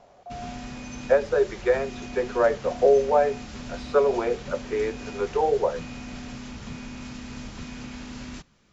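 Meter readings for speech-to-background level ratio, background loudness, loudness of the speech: 14.5 dB, −38.5 LKFS, −24.0 LKFS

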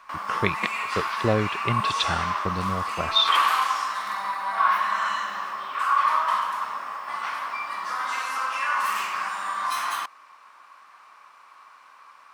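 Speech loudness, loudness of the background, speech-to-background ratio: −27.0 LKFS, −26.0 LKFS, −1.0 dB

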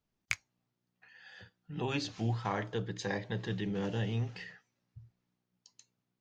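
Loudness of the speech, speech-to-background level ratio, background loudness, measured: −36.0 LKFS, 2.5 dB, −38.5 LKFS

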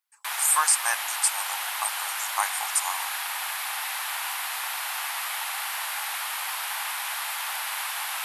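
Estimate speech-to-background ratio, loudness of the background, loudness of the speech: 3.5 dB, −29.0 LKFS, −25.5 LKFS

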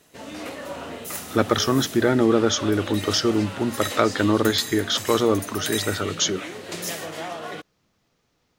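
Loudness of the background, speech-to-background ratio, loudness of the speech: −32.5 LKFS, 10.5 dB, −22.0 LKFS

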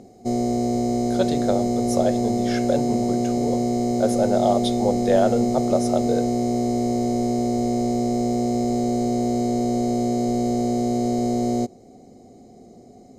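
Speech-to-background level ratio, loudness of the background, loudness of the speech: −3.0 dB, −22.5 LKFS, −25.5 LKFS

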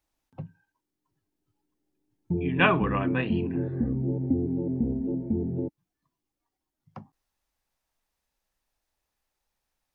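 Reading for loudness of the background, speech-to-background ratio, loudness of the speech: −29.5 LKFS, 2.5 dB, −27.0 LKFS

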